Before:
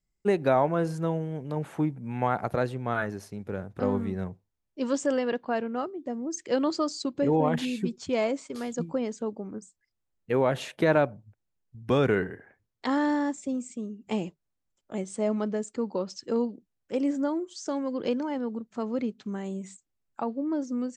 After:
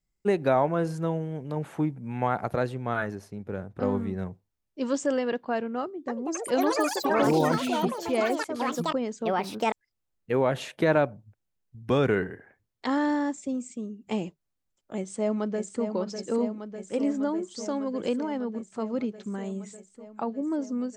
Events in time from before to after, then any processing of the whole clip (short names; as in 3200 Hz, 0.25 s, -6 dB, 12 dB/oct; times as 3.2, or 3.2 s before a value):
3.15–4.18 mismatched tape noise reduction decoder only
5.81–10.96 echoes that change speed 0.27 s, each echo +6 st, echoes 3
14.95–15.87 echo throw 0.6 s, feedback 80%, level -7.5 dB